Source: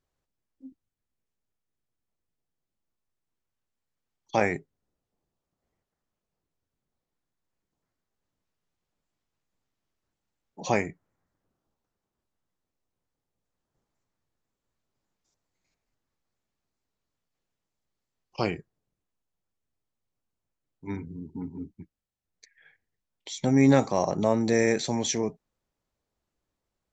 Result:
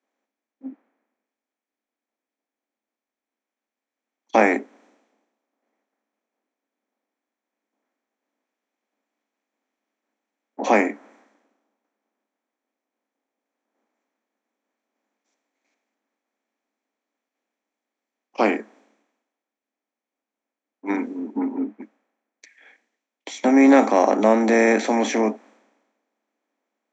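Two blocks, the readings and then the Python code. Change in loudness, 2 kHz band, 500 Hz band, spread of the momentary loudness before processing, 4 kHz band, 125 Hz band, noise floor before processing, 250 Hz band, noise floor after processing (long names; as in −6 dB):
+6.5 dB, +9.0 dB, +7.5 dB, 19 LU, +0.5 dB, can't be measured, below −85 dBFS, +7.0 dB, below −85 dBFS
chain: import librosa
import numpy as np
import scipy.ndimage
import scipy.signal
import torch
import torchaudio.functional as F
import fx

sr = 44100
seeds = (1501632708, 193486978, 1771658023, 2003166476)

y = fx.bin_compress(x, sr, power=0.6)
y = scipy.signal.sosfilt(scipy.signal.cheby1(6, 3, 210.0, 'highpass', fs=sr, output='sos'), y)
y = fx.high_shelf_res(y, sr, hz=3100.0, db=-7.0, q=1.5)
y = fx.band_widen(y, sr, depth_pct=100)
y = F.gain(torch.from_numpy(y), -2.5).numpy()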